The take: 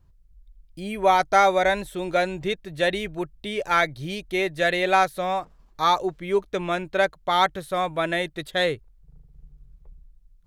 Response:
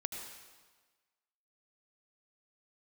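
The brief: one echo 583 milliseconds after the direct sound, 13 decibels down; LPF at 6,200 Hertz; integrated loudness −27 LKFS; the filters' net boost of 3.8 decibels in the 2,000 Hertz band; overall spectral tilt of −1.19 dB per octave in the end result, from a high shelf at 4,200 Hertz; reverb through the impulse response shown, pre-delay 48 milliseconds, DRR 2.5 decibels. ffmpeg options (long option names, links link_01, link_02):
-filter_complex "[0:a]lowpass=6200,equalizer=frequency=2000:width_type=o:gain=3,highshelf=frequency=4200:gain=8.5,aecho=1:1:583:0.224,asplit=2[link_01][link_02];[1:a]atrim=start_sample=2205,adelay=48[link_03];[link_02][link_03]afir=irnorm=-1:irlink=0,volume=-3dB[link_04];[link_01][link_04]amix=inputs=2:normalize=0,volume=-7dB"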